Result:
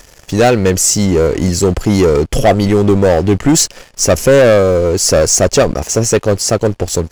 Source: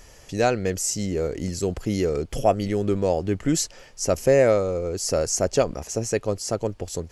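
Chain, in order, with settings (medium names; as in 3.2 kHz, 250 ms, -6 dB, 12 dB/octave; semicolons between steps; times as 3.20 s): waveshaping leveller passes 3; trim +4 dB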